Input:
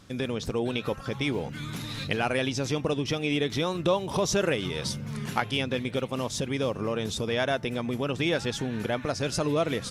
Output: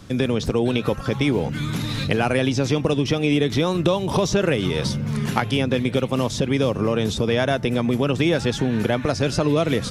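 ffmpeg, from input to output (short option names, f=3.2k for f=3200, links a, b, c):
-filter_complex "[0:a]lowshelf=f=470:g=5,acrossover=split=220|1900|5400[a][b][c][d];[a]acompressor=threshold=-30dB:ratio=4[e];[b]acompressor=threshold=-25dB:ratio=4[f];[c]acompressor=threshold=-36dB:ratio=4[g];[d]acompressor=threshold=-46dB:ratio=4[h];[e][f][g][h]amix=inputs=4:normalize=0,volume=7dB"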